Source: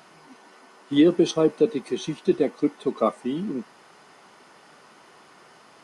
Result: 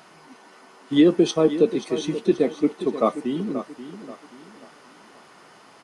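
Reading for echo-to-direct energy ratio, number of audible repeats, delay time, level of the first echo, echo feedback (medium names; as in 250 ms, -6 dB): -12.0 dB, 3, 532 ms, -12.5 dB, 36%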